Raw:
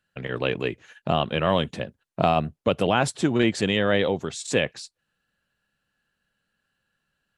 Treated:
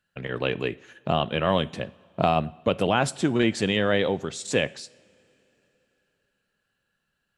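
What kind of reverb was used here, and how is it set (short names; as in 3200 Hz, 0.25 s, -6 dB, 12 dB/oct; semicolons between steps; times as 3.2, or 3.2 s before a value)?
two-slope reverb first 0.59 s, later 3.7 s, from -18 dB, DRR 17.5 dB; gain -1 dB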